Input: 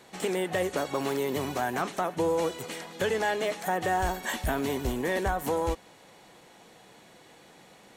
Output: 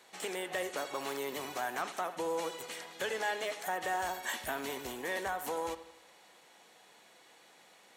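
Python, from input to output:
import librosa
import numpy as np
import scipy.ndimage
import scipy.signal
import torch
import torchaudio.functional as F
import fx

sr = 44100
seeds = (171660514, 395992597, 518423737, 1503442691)

p1 = fx.highpass(x, sr, hz=810.0, slope=6)
p2 = p1 + fx.echo_bbd(p1, sr, ms=79, stages=2048, feedback_pct=51, wet_db=-14.0, dry=0)
y = F.gain(torch.from_numpy(p2), -3.5).numpy()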